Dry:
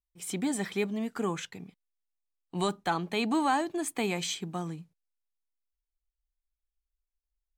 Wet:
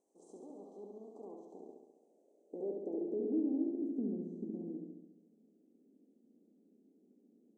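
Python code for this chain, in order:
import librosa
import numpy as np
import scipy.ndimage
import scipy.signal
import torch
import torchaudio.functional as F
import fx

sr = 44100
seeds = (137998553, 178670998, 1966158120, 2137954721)

y = fx.bin_compress(x, sr, power=0.4)
y = fx.env_lowpass_down(y, sr, base_hz=2300.0, full_db=-21.0)
y = scipy.signal.sosfilt(scipy.signal.ellip(3, 1.0, 70, [500.0, 6700.0], 'bandstop', fs=sr, output='sos'), y)
y = fx.filter_sweep_bandpass(y, sr, from_hz=1200.0, to_hz=230.0, start_s=0.99, end_s=4.05, q=2.5)
y = fx.brickwall_bandpass(y, sr, low_hz=180.0, high_hz=11000.0)
y = fx.room_flutter(y, sr, wall_m=11.8, rt60_s=1.0)
y = y * librosa.db_to_amplitude(-6.0)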